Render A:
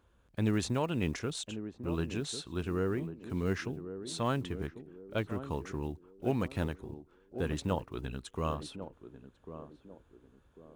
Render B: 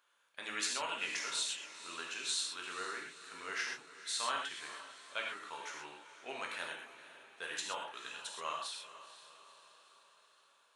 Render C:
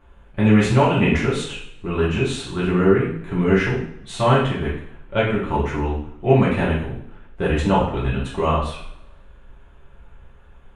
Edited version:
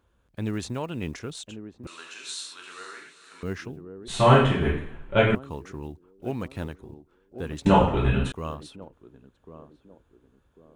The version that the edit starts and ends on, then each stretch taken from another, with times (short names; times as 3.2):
A
1.87–3.43 from B
4.08–5.35 from C
7.66–8.32 from C